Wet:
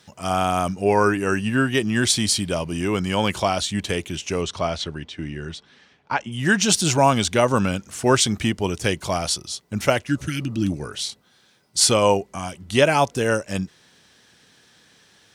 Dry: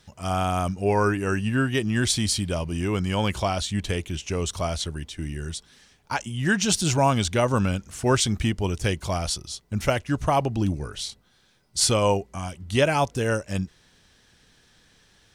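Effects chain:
0:04.41–0:06.31: low-pass filter 4,800 Hz → 2,800 Hz 12 dB per octave
0:10.13–0:10.67: healed spectral selection 350–1,300 Hz before
Bessel high-pass filter 160 Hz, order 2
level +4.5 dB

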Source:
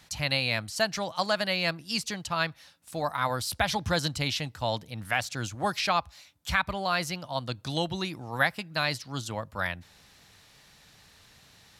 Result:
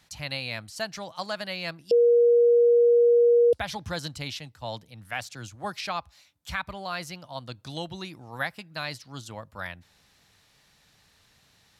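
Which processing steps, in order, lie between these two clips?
0:01.91–0:03.53: beep over 475 Hz −9.5 dBFS
0:04.39–0:05.81: multiband upward and downward expander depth 40%
level −5.5 dB

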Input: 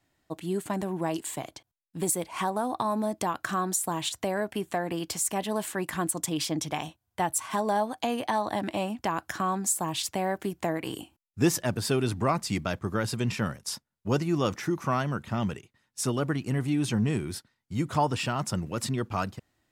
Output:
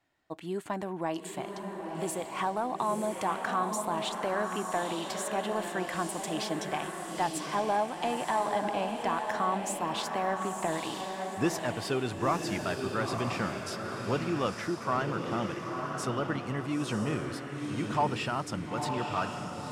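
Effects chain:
mid-hump overdrive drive 9 dB, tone 2,100 Hz, clips at −11.5 dBFS
feedback delay with all-pass diffusion 947 ms, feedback 43%, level −4 dB
level −3.5 dB

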